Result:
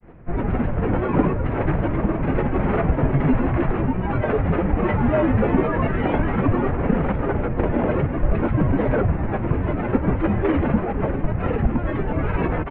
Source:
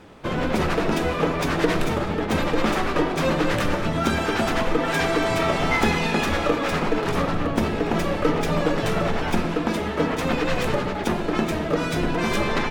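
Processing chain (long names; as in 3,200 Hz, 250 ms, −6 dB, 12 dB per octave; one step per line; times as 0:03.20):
high-pass filter 170 Hz 24 dB per octave
parametric band 550 Hz +13.5 dB 1.7 octaves
in parallel at −2 dB: brickwall limiter −6.5 dBFS, peak gain reduction 9.5 dB
on the sum: granular cloud, pitch spread up and down by 7 semitones
on a send: single-tap delay 999 ms −15.5 dB
on the sum: single-sideband voice off tune −370 Hz 270–2,800 Hz
level −8.5 dB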